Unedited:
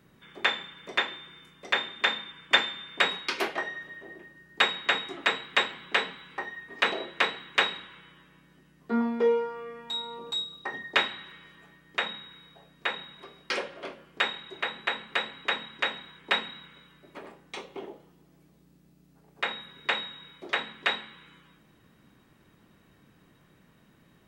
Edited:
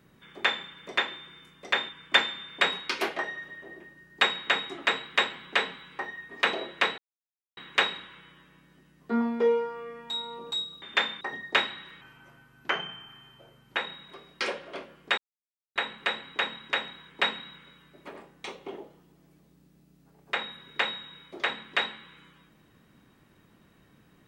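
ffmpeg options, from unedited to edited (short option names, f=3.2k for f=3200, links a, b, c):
-filter_complex "[0:a]asplit=9[a][b][c][d][e][f][g][h][i];[a]atrim=end=1.892[j];[b]atrim=start=2.278:end=7.37,asetpts=PTS-STARTPTS,afade=t=out:st=5.088:d=0.004:c=hsin,apad=pad_dur=0.59[k];[c]atrim=start=7.37:end=10.622,asetpts=PTS-STARTPTS,afade=t=in:d=0.004:c=hsin[l];[d]atrim=start=1.888:end=2.282[m];[e]atrim=start=10.618:end=11.424[n];[f]atrim=start=11.42:end=12.86,asetpts=PTS-STARTPTS,asetrate=36162,aresample=44100[o];[g]atrim=start=12.856:end=14.27,asetpts=PTS-STARTPTS,afade=t=out:st=1.41:d=0.004:c=hsin[p];[h]atrim=start=14.27:end=14.85,asetpts=PTS-STARTPTS,volume=0[q];[i]atrim=start=14.85,asetpts=PTS-STARTPTS,afade=t=in:d=0.004:c=hsin[r];[k][l]concat=n=2:v=0:a=1[s];[j][s]acrossfade=d=0.004:c1=hsin:c2=hsin[t];[t][m]acrossfade=d=0.004:c1=hsin:c2=hsin[u];[u][n]acrossfade=d=0.004:c1=hsin:c2=hsin[v];[v][o]acrossfade=d=0.004:c1=hsin:c2=hsin[w];[p][q][r]concat=n=3:v=0:a=1[x];[w][x]acrossfade=d=0.004:c1=hsin:c2=hsin"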